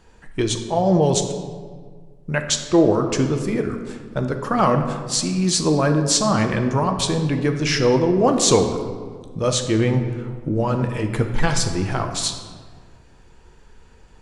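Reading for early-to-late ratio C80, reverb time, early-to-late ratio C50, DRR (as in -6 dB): 9.0 dB, 1.7 s, 7.5 dB, 5.0 dB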